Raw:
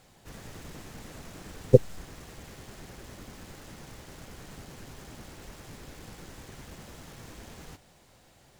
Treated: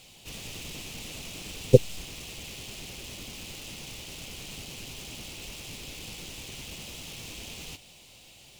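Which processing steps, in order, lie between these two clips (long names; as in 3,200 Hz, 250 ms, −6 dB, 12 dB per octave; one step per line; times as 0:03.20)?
high shelf with overshoot 2,100 Hz +8 dB, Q 3
level +1 dB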